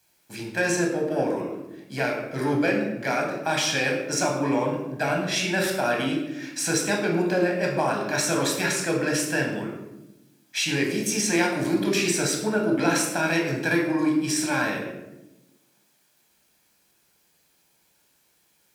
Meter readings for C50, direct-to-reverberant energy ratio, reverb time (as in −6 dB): 4.5 dB, 0.0 dB, 0.95 s